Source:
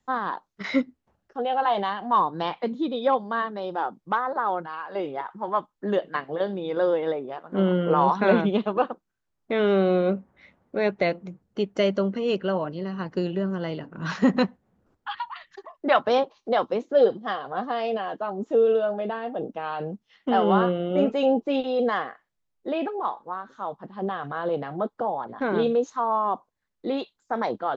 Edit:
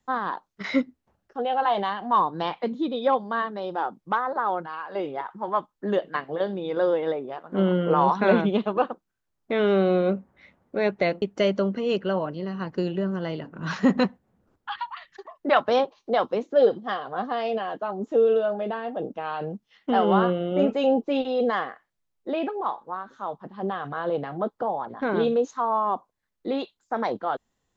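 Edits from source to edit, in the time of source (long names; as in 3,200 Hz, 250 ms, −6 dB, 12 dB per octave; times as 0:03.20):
0:11.22–0:11.61: remove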